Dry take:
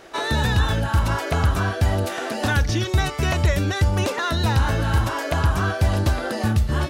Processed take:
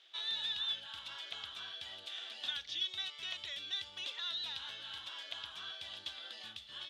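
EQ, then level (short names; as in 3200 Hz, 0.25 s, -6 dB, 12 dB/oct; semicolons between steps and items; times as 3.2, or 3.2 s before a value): band-pass 3400 Hz, Q 8.7; 0.0 dB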